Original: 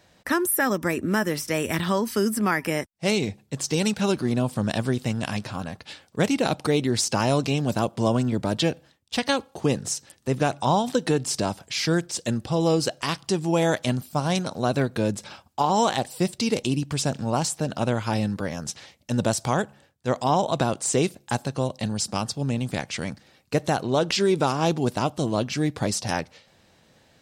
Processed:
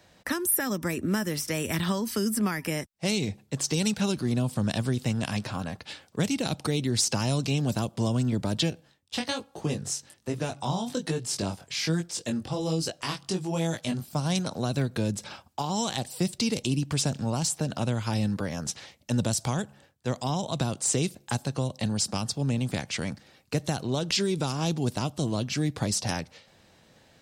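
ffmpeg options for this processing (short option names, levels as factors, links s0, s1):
-filter_complex "[0:a]asettb=1/sr,asplit=3[s0][s1][s2];[s0]atrim=end=8.704[s3];[s1]atrim=start=8.7:end=14.08,asetpts=PTS-STARTPTS,afade=t=in:d=0.004:c=qsin,afade=t=out:st=5.376:d=0.004:c=qsin,flanger=delay=18:depth=4.2:speed=1.2[s4];[s2]atrim=start=14.076[s5];[s3][s4]acrossfade=d=0.004:c1=hsin:c2=qsin[s6];[s6][s5]acrossfade=d=0.004:c1=qsin:c2=hsin,acrossover=split=220|3000[s7][s8][s9];[s8]acompressor=threshold=0.0316:ratio=6[s10];[s7][s10][s9]amix=inputs=3:normalize=0"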